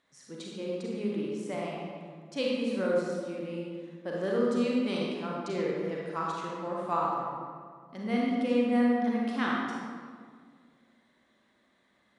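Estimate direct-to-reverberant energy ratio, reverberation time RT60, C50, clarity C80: -4.0 dB, 1.9 s, -2.0 dB, 0.5 dB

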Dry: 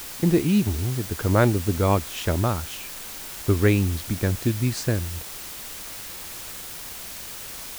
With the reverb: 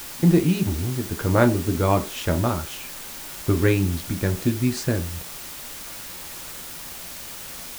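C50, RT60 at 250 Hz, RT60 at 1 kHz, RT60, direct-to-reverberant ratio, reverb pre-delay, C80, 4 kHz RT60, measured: 17.0 dB, 0.40 s, 0.40 s, 0.40 s, 6.5 dB, 3 ms, 22.0 dB, 0.25 s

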